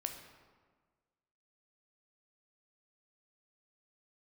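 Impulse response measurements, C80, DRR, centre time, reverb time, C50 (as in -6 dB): 8.5 dB, 4.5 dB, 29 ms, 1.5 s, 7.0 dB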